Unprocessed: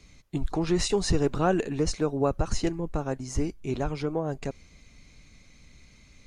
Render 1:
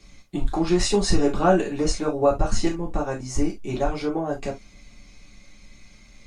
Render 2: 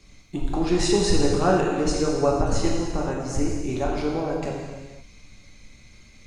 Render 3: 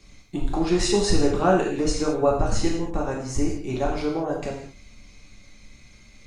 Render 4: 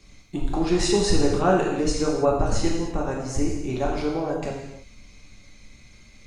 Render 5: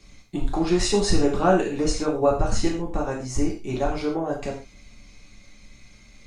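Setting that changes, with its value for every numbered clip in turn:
reverb whose tail is shaped and stops, gate: 90, 540, 240, 350, 160 milliseconds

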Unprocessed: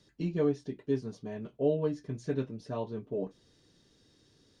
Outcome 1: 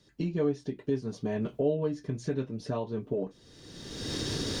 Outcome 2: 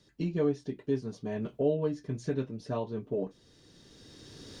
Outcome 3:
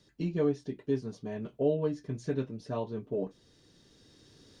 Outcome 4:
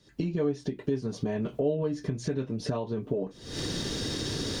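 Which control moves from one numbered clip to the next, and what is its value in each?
camcorder AGC, rising by: 34, 13, 5.1, 89 dB per second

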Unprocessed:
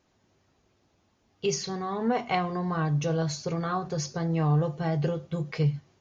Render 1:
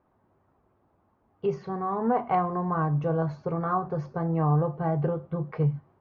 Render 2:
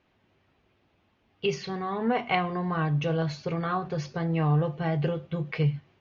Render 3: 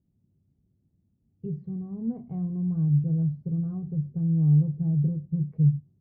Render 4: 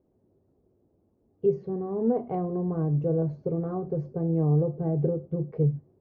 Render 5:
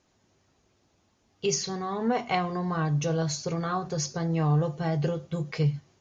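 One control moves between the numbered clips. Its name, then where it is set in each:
low-pass with resonance, frequency: 1,100, 2,800, 170, 440, 8,000 Hertz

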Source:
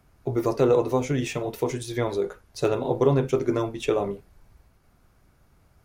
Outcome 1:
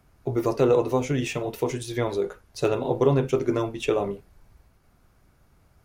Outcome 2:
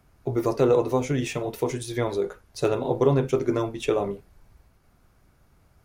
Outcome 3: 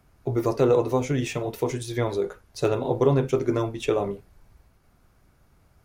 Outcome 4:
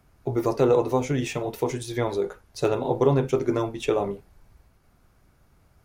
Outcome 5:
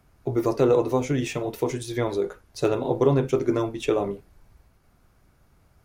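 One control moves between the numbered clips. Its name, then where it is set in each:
dynamic equaliser, frequency: 2,800, 9,600, 110, 840, 310 Hertz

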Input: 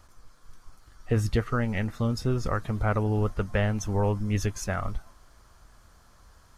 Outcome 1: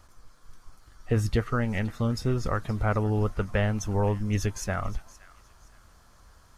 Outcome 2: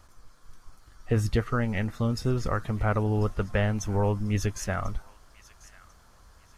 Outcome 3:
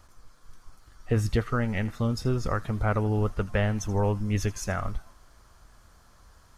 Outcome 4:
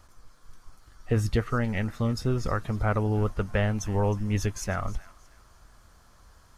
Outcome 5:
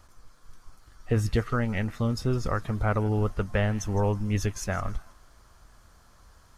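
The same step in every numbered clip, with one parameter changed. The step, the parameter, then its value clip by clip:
delay with a high-pass on its return, delay time: 520, 1,043, 80, 312, 160 milliseconds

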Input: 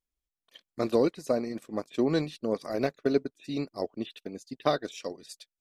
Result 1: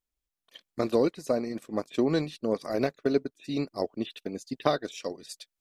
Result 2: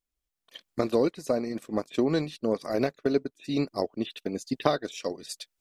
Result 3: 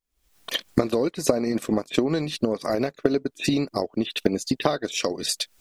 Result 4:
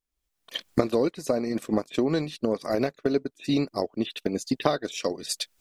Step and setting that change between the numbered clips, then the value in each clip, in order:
camcorder AGC, rising by: 5.1, 12, 90, 35 dB per second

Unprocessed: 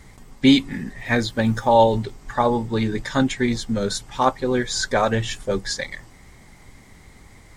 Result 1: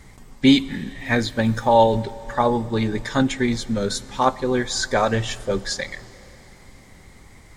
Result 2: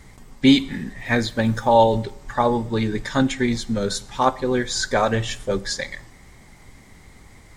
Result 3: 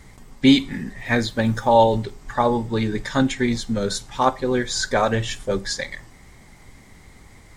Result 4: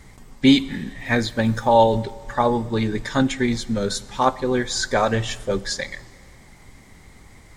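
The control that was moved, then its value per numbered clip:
four-comb reverb, RT60: 3.8, 0.74, 0.32, 1.7 seconds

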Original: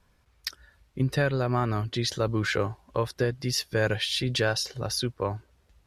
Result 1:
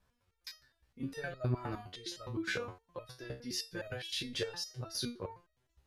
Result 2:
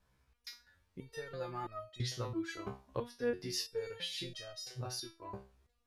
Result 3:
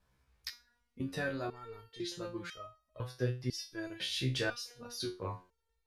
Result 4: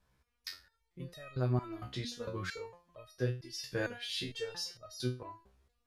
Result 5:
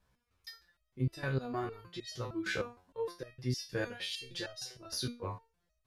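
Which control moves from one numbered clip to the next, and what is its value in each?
step-sequenced resonator, speed: 9.7, 3, 2, 4.4, 6.5 Hertz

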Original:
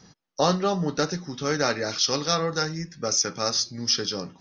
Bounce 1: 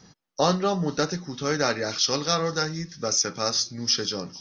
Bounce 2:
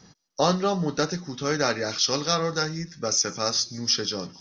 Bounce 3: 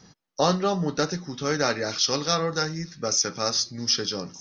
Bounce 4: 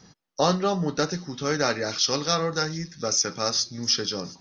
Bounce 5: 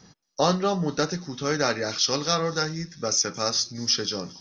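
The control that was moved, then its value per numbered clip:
delay with a high-pass on its return, delay time: 452, 151, 1,223, 716, 225 milliseconds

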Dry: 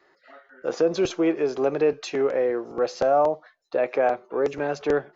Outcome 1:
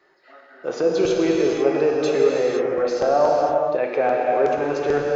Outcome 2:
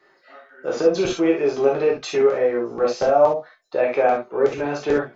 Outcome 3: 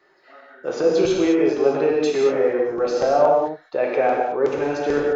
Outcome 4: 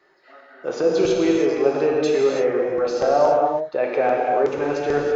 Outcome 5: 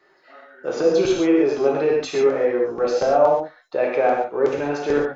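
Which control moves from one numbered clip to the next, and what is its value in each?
reverb whose tail is shaped and stops, gate: 530, 90, 240, 360, 160 milliseconds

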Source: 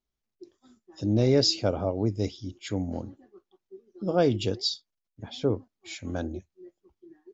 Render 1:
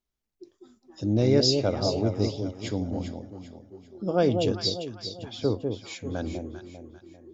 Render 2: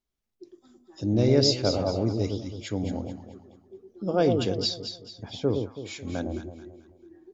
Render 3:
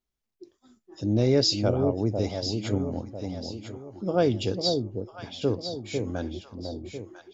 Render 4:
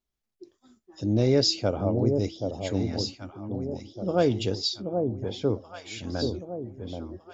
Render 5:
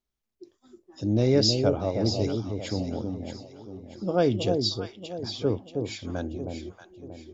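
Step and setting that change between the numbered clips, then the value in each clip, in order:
delay that swaps between a low-pass and a high-pass, delay time: 198, 109, 499, 779, 316 milliseconds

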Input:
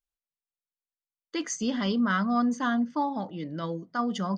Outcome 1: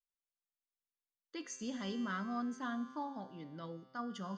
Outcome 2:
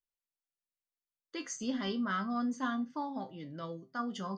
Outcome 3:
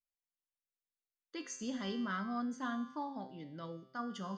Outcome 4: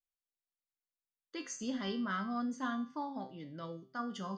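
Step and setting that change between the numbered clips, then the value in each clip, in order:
tuned comb filter, decay: 2.2, 0.21, 0.95, 0.46 seconds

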